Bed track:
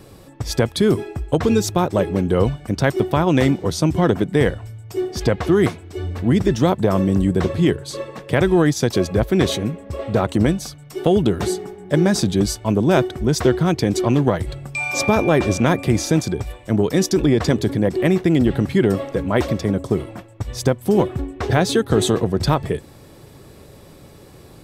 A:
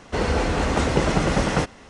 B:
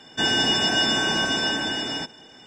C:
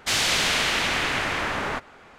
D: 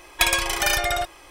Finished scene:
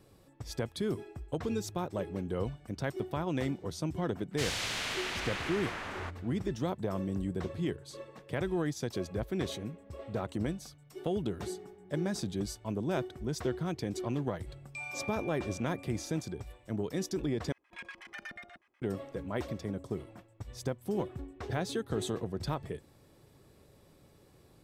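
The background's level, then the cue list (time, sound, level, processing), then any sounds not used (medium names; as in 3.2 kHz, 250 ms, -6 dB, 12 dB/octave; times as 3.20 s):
bed track -17 dB
4.31 s: add C -13 dB
17.52 s: replace with D -16 dB + LFO band-pass square 8.2 Hz 220–1800 Hz
not used: A, B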